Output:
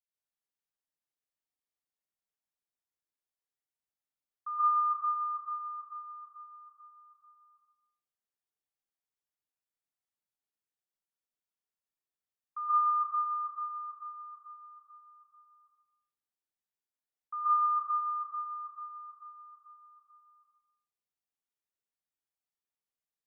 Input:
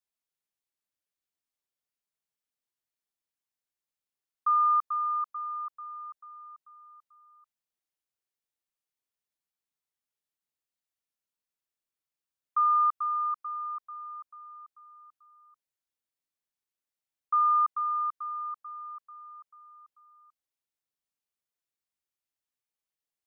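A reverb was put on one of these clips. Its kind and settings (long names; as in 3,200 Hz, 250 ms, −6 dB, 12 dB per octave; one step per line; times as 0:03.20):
dense smooth reverb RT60 0.75 s, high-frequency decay 0.45×, pre-delay 110 ms, DRR −7.5 dB
level −13 dB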